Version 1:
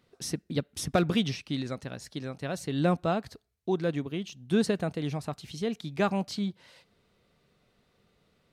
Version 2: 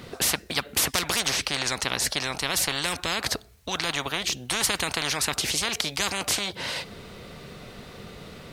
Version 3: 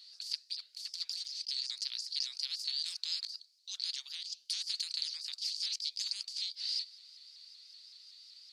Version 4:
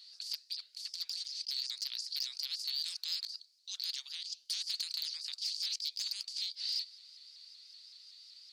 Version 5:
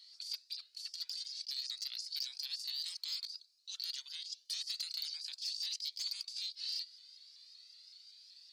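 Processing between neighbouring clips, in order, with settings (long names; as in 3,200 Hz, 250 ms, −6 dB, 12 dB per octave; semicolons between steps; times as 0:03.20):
every bin compressed towards the loudest bin 10 to 1; level +9 dB
four-pole ladder band-pass 4,800 Hz, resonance 85%; compressor whose output falls as the input rises −34 dBFS, ratio −0.5; pitch modulation by a square or saw wave saw up 5.3 Hz, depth 100 cents; level −2.5 dB
hard clipping −27.5 dBFS, distortion −17 dB
flanger whose copies keep moving one way rising 0.34 Hz; level +1.5 dB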